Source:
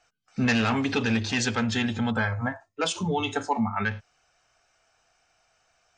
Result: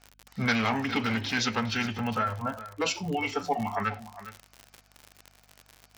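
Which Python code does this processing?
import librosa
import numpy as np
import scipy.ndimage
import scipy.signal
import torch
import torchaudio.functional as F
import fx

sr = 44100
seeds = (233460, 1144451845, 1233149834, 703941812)

y = fx.low_shelf(x, sr, hz=340.0, db=-7.5)
y = fx.add_hum(y, sr, base_hz=50, snr_db=33)
y = fx.dmg_crackle(y, sr, seeds[0], per_s=66.0, level_db=-33.0)
y = fx.formant_shift(y, sr, semitones=-3)
y = y + 10.0 ** (-14.5 / 20.0) * np.pad(y, (int(409 * sr / 1000.0), 0))[:len(y)]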